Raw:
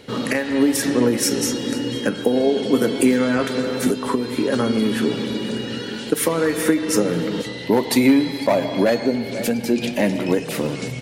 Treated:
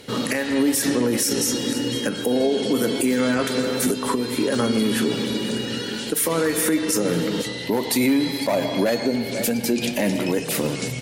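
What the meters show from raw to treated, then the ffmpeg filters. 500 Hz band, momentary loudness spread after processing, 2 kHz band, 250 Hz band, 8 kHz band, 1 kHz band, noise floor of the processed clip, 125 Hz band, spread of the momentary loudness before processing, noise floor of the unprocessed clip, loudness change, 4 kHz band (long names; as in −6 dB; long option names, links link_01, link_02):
−2.5 dB, 5 LU, −1.0 dB, −2.5 dB, +2.0 dB, −2.0 dB, −30 dBFS, −1.5 dB, 7 LU, −31 dBFS, −1.5 dB, +1.5 dB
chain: -af "aemphasis=mode=production:type=cd,alimiter=limit=-11.5dB:level=0:latency=1:release=48"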